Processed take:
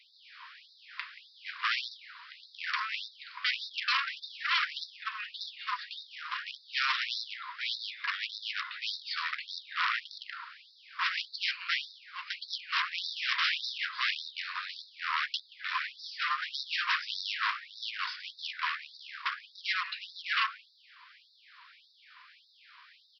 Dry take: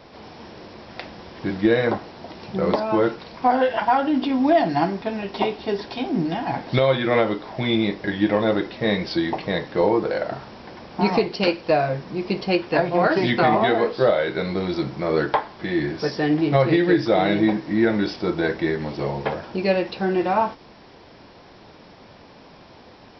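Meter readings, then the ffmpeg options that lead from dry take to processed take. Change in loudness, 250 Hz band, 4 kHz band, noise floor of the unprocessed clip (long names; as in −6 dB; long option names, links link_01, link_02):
−11.5 dB, below −40 dB, 0.0 dB, −47 dBFS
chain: -filter_complex "[0:a]bass=frequency=250:gain=8,treble=frequency=4000:gain=-8,asplit=2[link_01][link_02];[link_02]adelay=180,highpass=300,lowpass=3400,asoftclip=type=hard:threshold=-13.5dB,volume=-14dB[link_03];[link_01][link_03]amix=inputs=2:normalize=0,aresample=11025,aeval=exprs='0.0944*(abs(mod(val(0)/0.0944+3,4)-2)-1)':channel_layout=same,aresample=44100,afftfilt=real='re*gte(b*sr/1024,940*pow(3600/940,0.5+0.5*sin(2*PI*1.7*pts/sr)))':imag='im*gte(b*sr/1024,940*pow(3600/940,0.5+0.5*sin(2*PI*1.7*pts/sr)))':win_size=1024:overlap=0.75"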